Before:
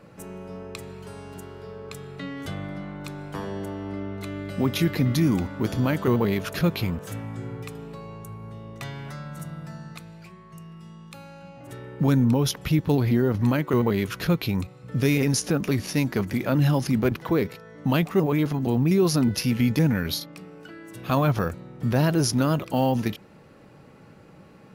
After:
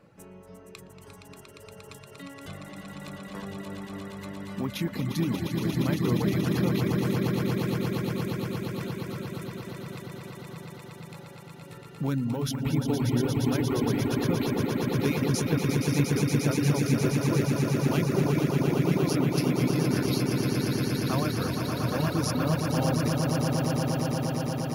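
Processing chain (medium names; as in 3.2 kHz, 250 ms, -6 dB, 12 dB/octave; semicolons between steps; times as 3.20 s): echo with a slow build-up 117 ms, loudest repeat 8, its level -5.5 dB; reverb removal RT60 0.66 s; trim -7.5 dB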